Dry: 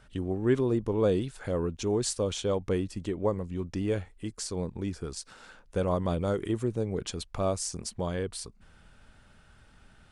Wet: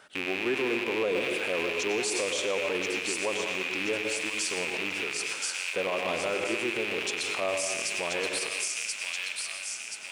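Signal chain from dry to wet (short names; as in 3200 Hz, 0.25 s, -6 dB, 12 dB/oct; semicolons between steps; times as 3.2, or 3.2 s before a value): rattling part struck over -42 dBFS, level -22 dBFS; HPF 430 Hz 12 dB/oct; thin delay 1.029 s, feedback 49%, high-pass 2400 Hz, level -3.5 dB; plate-style reverb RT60 0.96 s, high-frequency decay 0.85×, pre-delay 85 ms, DRR 5 dB; limiter -27.5 dBFS, peak gain reduction 11 dB; gain +7.5 dB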